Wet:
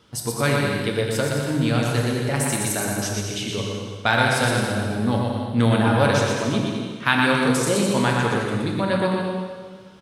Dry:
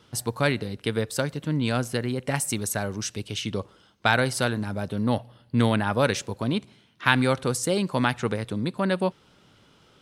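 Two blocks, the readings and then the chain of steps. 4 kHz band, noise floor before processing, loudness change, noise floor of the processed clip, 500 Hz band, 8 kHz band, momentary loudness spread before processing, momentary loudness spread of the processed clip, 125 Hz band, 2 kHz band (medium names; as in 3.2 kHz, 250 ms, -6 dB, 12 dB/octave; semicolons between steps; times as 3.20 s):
+4.5 dB, -59 dBFS, +4.5 dB, -38 dBFS, +4.5 dB, +4.5 dB, 8 LU, 8 LU, +5.0 dB, +4.5 dB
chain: on a send: bouncing-ball echo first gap 120 ms, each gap 0.75×, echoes 5; on the sum: plate-style reverb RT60 1.7 s, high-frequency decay 0.95×, DRR 1.5 dB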